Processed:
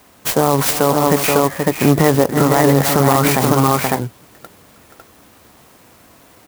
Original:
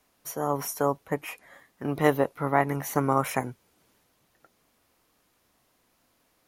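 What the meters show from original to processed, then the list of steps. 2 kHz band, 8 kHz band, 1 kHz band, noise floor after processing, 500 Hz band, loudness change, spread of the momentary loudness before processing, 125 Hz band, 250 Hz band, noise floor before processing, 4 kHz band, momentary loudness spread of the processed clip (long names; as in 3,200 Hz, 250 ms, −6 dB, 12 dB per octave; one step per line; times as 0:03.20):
+12.0 dB, +17.5 dB, +12.0 dB, −48 dBFS, +13.0 dB, +13.0 dB, 13 LU, +16.5 dB, +15.0 dB, −70 dBFS, +20.5 dB, 5 LU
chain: in parallel at −2.5 dB: downward compressor, threshold −36 dBFS, peak gain reduction 19.5 dB
on the sum: high-pass filter 75 Hz
low-shelf EQ 98 Hz +8.5 dB
on a send: multi-tap delay 315/477/552/562 ms −17.5/−10.5/−5/−17 dB
on the sum: boost into a limiter +16.5 dB
converter with an unsteady clock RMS 0.058 ms
level −1 dB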